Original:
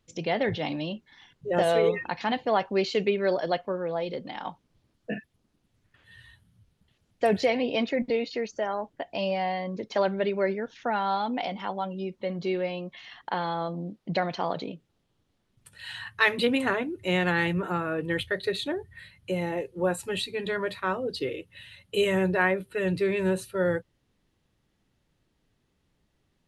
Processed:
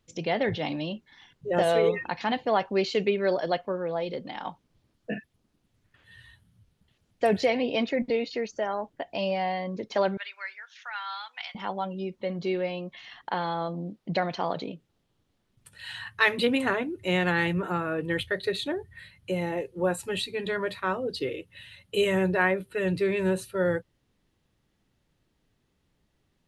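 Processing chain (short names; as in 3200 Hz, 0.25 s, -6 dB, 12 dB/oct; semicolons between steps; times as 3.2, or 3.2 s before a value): 10.17–11.55 HPF 1300 Hz 24 dB/oct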